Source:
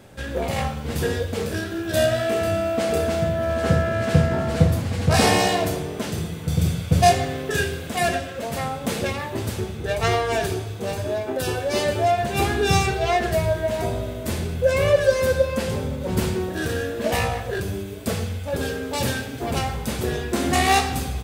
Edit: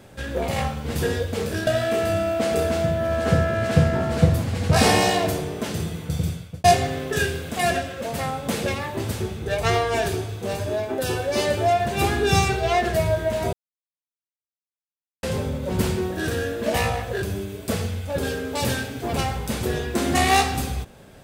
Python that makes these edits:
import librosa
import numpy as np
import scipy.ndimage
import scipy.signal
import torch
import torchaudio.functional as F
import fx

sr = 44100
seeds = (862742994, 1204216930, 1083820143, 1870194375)

y = fx.edit(x, sr, fx.cut(start_s=1.67, length_s=0.38),
    fx.fade_out_span(start_s=6.36, length_s=0.66),
    fx.silence(start_s=13.91, length_s=1.7), tone=tone)